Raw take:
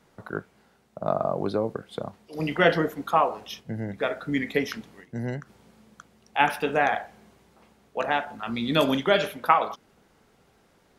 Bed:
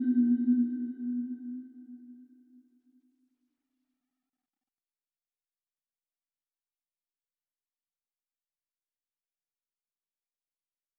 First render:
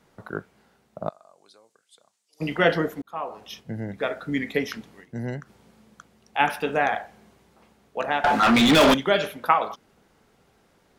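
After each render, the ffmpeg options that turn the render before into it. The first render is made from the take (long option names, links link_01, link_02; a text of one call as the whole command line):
ffmpeg -i in.wav -filter_complex "[0:a]asplit=3[link_01][link_02][link_03];[link_01]afade=type=out:start_time=1.08:duration=0.02[link_04];[link_02]bandpass=frequency=7600:width_type=q:width=2.1,afade=type=in:start_time=1.08:duration=0.02,afade=type=out:start_time=2.4:duration=0.02[link_05];[link_03]afade=type=in:start_time=2.4:duration=0.02[link_06];[link_04][link_05][link_06]amix=inputs=3:normalize=0,asettb=1/sr,asplit=3[link_07][link_08][link_09];[link_07]atrim=end=8.244[link_10];[link_08]atrim=start=8.24:end=8.94,asetpts=PTS-STARTPTS,afade=type=in:duration=0.004:curve=qsin,afade=type=out:start_time=0.696:duration=0.004:curve=qsin,asplit=2[link_11][link_12];[link_12]highpass=frequency=720:poles=1,volume=34dB,asoftclip=type=tanh:threshold=-8.5dB[link_13];[link_11][link_13]amix=inputs=2:normalize=0,lowpass=frequency=3300:poles=1,volume=-6dB[link_14];[link_09]atrim=start=8.936[link_15];[link_10][link_14]acrossfade=duration=0.004:curve1=hsin:curve2=qsin[link_16];[link_16][link_15]acrossfade=duration=0.004:curve1=qsin:curve2=hsin,asplit=2[link_17][link_18];[link_17]atrim=end=3.02,asetpts=PTS-STARTPTS,afade=type=out:start_time=3.016:duration=0.004:curve=hsin[link_19];[link_18]atrim=start=3.02,asetpts=PTS-STARTPTS,afade=type=in:duration=0.59[link_20];[link_19][link_20]concat=n=2:v=0:a=1" out.wav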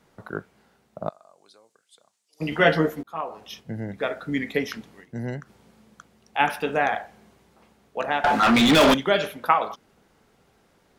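ffmpeg -i in.wav -filter_complex "[0:a]asettb=1/sr,asplit=3[link_01][link_02][link_03];[link_01]atrim=end=2.514[link_04];[link_02]atrim=start=2.51:end=3.21,asetpts=PTS-STARTPTS,afade=type=in:duration=0.004:curve=qsin,afade=type=out:start_time=0.696:duration=0.004:curve=qsin,asplit=2[link_05][link_06];[link_06]adelay=13,volume=-2.5dB[link_07];[link_05][link_07]amix=inputs=2:normalize=0,atrim=end_sample=30870[link_08];[link_03]atrim=start=3.206[link_09];[link_04][link_08]acrossfade=duration=0.004:curve1=hsin:curve2=qsin[link_10];[link_10][link_09]acrossfade=duration=0.004:curve1=qsin:curve2=hsin" out.wav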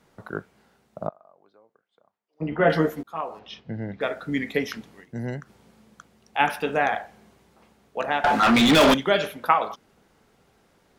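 ffmpeg -i in.wav -filter_complex "[0:a]asettb=1/sr,asplit=3[link_01][link_02][link_03];[link_01]atrim=end=1.074[link_04];[link_02]atrim=start=1.07:end=2.7,asetpts=PTS-STARTPTS,afade=type=in:duration=0.004:curve=qsin,afade=type=out:start_time=1.626:duration=0.004:curve=qsin,lowpass=1300[link_05];[link_03]atrim=start=2.696[link_06];[link_04][link_05]acrossfade=duration=0.004:curve1=hsin:curve2=qsin[link_07];[link_07][link_06]acrossfade=duration=0.004:curve1=qsin:curve2=hsin,asettb=1/sr,asplit=3[link_08][link_09][link_10];[link_08]atrim=end=3.394[link_11];[link_09]atrim=start=3.39:end=4.01,asetpts=PTS-STARTPTS,afade=type=in:duration=0.004:curve=qsin,afade=type=out:start_time=0.616:duration=0.004:curve=qsin,lowpass=frequency=4600:width=0.5412,lowpass=frequency=4600:width=1.3066[link_12];[link_10]atrim=start=4.006[link_13];[link_11][link_12]acrossfade=duration=0.004:curve1=hsin:curve2=qsin[link_14];[link_14][link_13]acrossfade=duration=0.004:curve1=qsin:curve2=hsin" out.wav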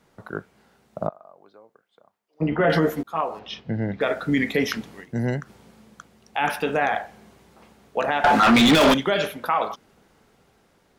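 ffmpeg -i in.wav -af "dynaudnorm=framelen=380:gausssize=5:maxgain=8dB,alimiter=limit=-11dB:level=0:latency=1:release=35" out.wav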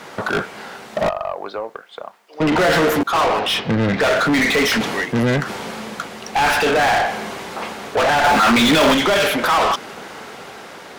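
ffmpeg -i in.wav -filter_complex "[0:a]asplit=2[link_01][link_02];[link_02]asoftclip=type=tanh:threshold=-27.5dB,volume=-6.5dB[link_03];[link_01][link_03]amix=inputs=2:normalize=0,asplit=2[link_04][link_05];[link_05]highpass=frequency=720:poles=1,volume=32dB,asoftclip=type=tanh:threshold=-10dB[link_06];[link_04][link_06]amix=inputs=2:normalize=0,lowpass=frequency=4100:poles=1,volume=-6dB" out.wav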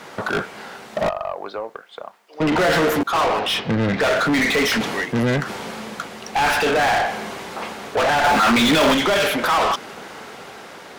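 ffmpeg -i in.wav -af "volume=-2dB" out.wav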